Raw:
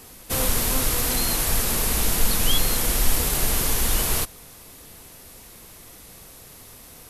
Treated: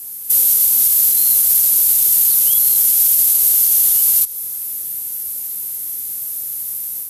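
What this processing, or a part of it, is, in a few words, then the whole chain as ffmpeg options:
FM broadcast chain: -filter_complex "[0:a]highpass=60,dynaudnorm=framelen=200:gausssize=3:maxgain=5.5dB,acrossover=split=440|1100|2600|6700[link_01][link_02][link_03][link_04][link_05];[link_01]acompressor=threshold=-36dB:ratio=4[link_06];[link_02]acompressor=threshold=-36dB:ratio=4[link_07];[link_03]acompressor=threshold=-45dB:ratio=4[link_08];[link_04]acompressor=threshold=-29dB:ratio=4[link_09];[link_05]acompressor=threshold=-27dB:ratio=4[link_10];[link_06][link_07][link_08][link_09][link_10]amix=inputs=5:normalize=0,aemphasis=mode=production:type=50fm,alimiter=limit=-7.5dB:level=0:latency=1:release=36,asoftclip=type=hard:threshold=-9.5dB,lowpass=frequency=15000:width=0.5412,lowpass=frequency=15000:width=1.3066,aemphasis=mode=production:type=50fm,volume=-8.5dB"

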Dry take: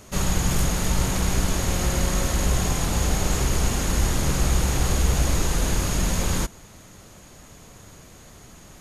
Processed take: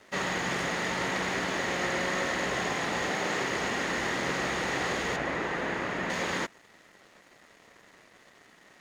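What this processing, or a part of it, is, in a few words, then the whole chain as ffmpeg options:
pocket radio on a weak battery: -filter_complex "[0:a]asettb=1/sr,asplit=3[link_01][link_02][link_03];[link_01]atrim=end=3.084[link_04];[link_02]atrim=start=3.08:end=3.51,asetpts=PTS-STARTPTS,afade=type=in:duration=0.004:curve=qsin,afade=type=out:start_time=0.426:duration=0.004:curve=qsin,highpass=99[link_05];[link_03]atrim=start=3.506[link_06];[link_04][link_05]acrossfade=duration=0.004:curve1=hsin:curve2=qsin[link_07];[link_07][link_06]acrossfade=duration=0.004:curve1=qsin:curve2=hsin,highpass=310,lowpass=3700,aeval=exprs='sgn(val(0))*max(abs(val(0))-0.002,0)':channel_layout=same,equalizer=frequency=1900:width_type=o:width=0.28:gain=10,asettb=1/sr,asplit=3[link_08][link_09][link_10];[link_08]atrim=end=5.164[link_11];[link_09]atrim=start=5.16:end=6.1,asetpts=PTS-STARTPTS,afade=type=in:duration=0.004:curve=qsin,afade=type=out:start_time=0.936:duration=0.004:curve=qsin,acrossover=split=2700[link_12][link_13];[link_13]acompressor=threshold=-50dB:ratio=4:attack=1:release=60[link_14];[link_12][link_14]amix=inputs=2:normalize=0[link_15];[link_10]atrim=start=6.096[link_16];[link_11][link_15]acrossfade=duration=0.004:curve1=hsin:curve2=qsin[link_17];[link_17][link_16]acrossfade=duration=0.004:curve1=qsin:curve2=hsin"

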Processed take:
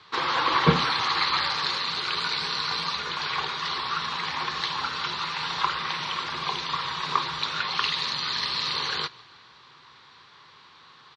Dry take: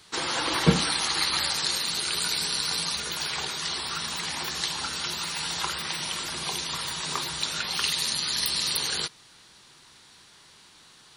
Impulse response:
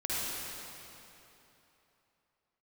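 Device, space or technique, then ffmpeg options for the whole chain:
frequency-shifting delay pedal into a guitar cabinet: -filter_complex "[0:a]asplit=5[link_01][link_02][link_03][link_04][link_05];[link_02]adelay=152,afreqshift=-33,volume=-24dB[link_06];[link_03]adelay=304,afreqshift=-66,volume=-28.9dB[link_07];[link_04]adelay=456,afreqshift=-99,volume=-33.8dB[link_08];[link_05]adelay=608,afreqshift=-132,volume=-38.6dB[link_09];[link_01][link_06][link_07][link_08][link_09]amix=inputs=5:normalize=0,highpass=100,equalizer=frequency=200:width_type=q:width=4:gain=-8,equalizer=frequency=310:width_type=q:width=4:gain=-6,equalizer=frequency=650:width_type=q:width=4:gain=-5,equalizer=frequency=1100:width_type=q:width=4:gain=9,equalizer=frequency=2900:width_type=q:width=4:gain=-3,lowpass=frequency=4100:width=0.5412,lowpass=frequency=4100:width=1.3066,volume=3dB"

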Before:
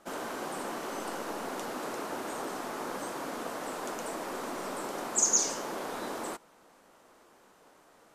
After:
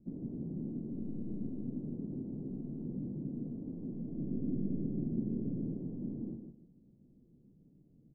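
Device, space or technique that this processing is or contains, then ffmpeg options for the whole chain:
the neighbour's flat through the wall: -filter_complex "[0:a]lowpass=frequency=230:width=0.5412,lowpass=frequency=230:width=1.3066,equalizer=frequency=140:width_type=o:width=0.47:gain=7,asettb=1/sr,asplit=3[link_01][link_02][link_03];[link_01]atrim=end=4.184[link_04];[link_02]atrim=start=4.18:end=5.73,asetpts=PTS-STARTPTS,afade=type=in:duration=0.004:curve=qsin,afade=type=out:start_time=1.546:duration=0.004:curve=qsin,tiltshelf=frequency=900:gain=5.5[link_05];[link_03]atrim=start=5.726[link_06];[link_04][link_05]acrossfade=duration=0.004:curve1=hsin:curve2=qsin[link_07];[link_07][link_06]acrossfade=duration=0.004:curve1=qsin:curve2=hsin,asplit=2[link_08][link_09];[link_09]adelay=154,lowpass=frequency=2000:poles=1,volume=-7dB,asplit=2[link_10][link_11];[link_11]adelay=154,lowpass=frequency=2000:poles=1,volume=0.23,asplit=2[link_12][link_13];[link_13]adelay=154,lowpass=frequency=2000:poles=1,volume=0.23[link_14];[link_08][link_10][link_12][link_14]amix=inputs=4:normalize=0,volume=8.5dB"

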